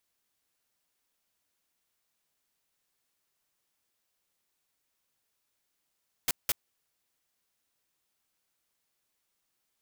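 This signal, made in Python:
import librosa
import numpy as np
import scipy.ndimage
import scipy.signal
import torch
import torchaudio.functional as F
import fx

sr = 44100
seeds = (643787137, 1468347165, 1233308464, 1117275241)

y = fx.noise_burst(sr, seeds[0], colour='white', on_s=0.03, off_s=0.18, bursts=2, level_db=-26.5)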